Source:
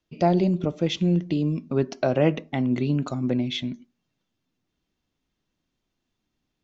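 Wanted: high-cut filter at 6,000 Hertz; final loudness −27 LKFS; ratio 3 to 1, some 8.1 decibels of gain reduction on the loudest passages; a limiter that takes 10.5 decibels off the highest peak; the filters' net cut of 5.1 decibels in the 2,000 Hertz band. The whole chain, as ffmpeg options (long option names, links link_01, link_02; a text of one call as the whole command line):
ffmpeg -i in.wav -af "lowpass=6000,equalizer=frequency=2000:width_type=o:gain=-6.5,acompressor=threshold=-27dB:ratio=3,volume=8dB,alimiter=limit=-17.5dB:level=0:latency=1" out.wav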